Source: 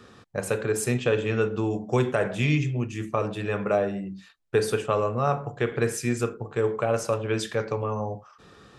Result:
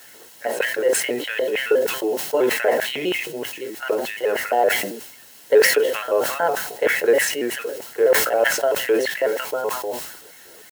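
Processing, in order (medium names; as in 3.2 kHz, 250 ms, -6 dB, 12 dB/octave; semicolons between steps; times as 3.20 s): pitch shift switched off and on +3 st, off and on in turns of 76 ms; dynamic bell 380 Hz, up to -3 dB, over -43 dBFS, Q 4.6; LFO high-pass square 3.9 Hz 410–2000 Hz; tempo 0.82×; tone controls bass -5 dB, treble -12 dB; word length cut 8-bit, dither triangular; comb of notches 1.2 kHz; decay stretcher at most 62 dB/s; trim +3 dB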